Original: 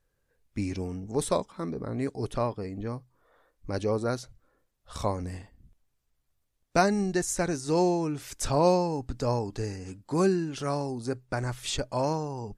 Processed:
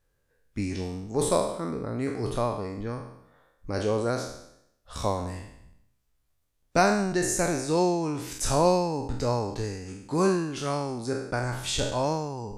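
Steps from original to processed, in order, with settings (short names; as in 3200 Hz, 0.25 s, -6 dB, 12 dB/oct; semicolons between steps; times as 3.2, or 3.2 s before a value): spectral trails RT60 0.77 s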